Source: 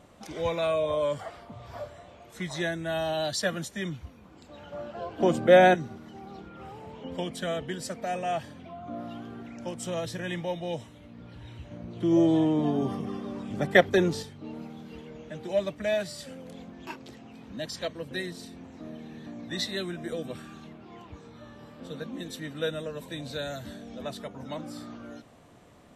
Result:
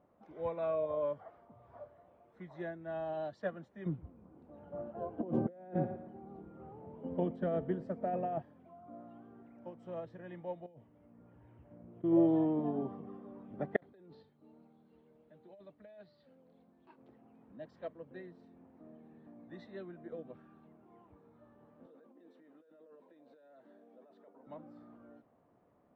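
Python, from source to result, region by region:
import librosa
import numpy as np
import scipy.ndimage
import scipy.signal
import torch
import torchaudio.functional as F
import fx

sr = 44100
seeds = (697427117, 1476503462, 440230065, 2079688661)

y = fx.chain(x, sr, fx.echo_feedback(ms=114, feedback_pct=53, wet_db=-19),
    fx.over_compress(threshold_db=-30.0, ratio=-1.0),
    fx.tilt_shelf(db=6.0, hz=640.0), at=(3.86, 8.42))
y = fx.chain(y, sr, fx.dynamic_eq(hz=1100.0, q=0.72, threshold_db=-49.0, ratio=4.0, max_db=-6),
    fx.over_compress(threshold_db=-38.0, ratio=-0.5),
    fx.savgol(points=25), at=(10.66, 12.04))
y = fx.chain(y, sr, fx.hum_notches(base_hz=50, count=2),
    fx.over_compress(threshold_db=-30.0, ratio=-1.0),
    fx.ladder_lowpass(hz=4500.0, resonance_pct=75), at=(13.76, 16.98))
y = fx.chain(y, sr, fx.over_compress(threshold_db=-40.0, ratio=-1.0),
    fx.ladder_highpass(hz=250.0, resonance_pct=25), at=(21.86, 24.47))
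y = scipy.signal.sosfilt(scipy.signal.butter(2, 1100.0, 'lowpass', fs=sr, output='sos'), y)
y = fx.low_shelf(y, sr, hz=130.0, db=-11.0)
y = fx.upward_expand(y, sr, threshold_db=-38.0, expansion=1.5)
y = y * librosa.db_to_amplitude(-3.0)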